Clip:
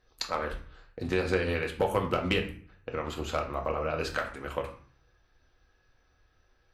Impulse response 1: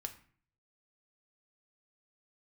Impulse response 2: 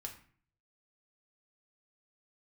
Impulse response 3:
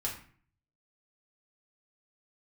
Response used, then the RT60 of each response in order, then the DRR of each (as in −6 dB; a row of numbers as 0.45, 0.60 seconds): 2; 0.50, 0.45, 0.45 seconds; 6.0, 1.5, −3.5 decibels